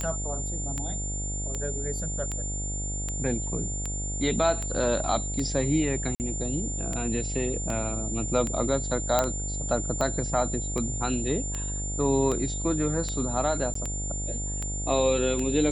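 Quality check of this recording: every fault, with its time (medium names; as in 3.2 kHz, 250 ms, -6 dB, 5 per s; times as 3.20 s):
buzz 50 Hz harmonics 17 -33 dBFS
tick 78 rpm -17 dBFS
whine 7.2 kHz -33 dBFS
6.15–6.20 s: dropout 49 ms
9.19 s: pop -8 dBFS
13.74–13.75 s: dropout 14 ms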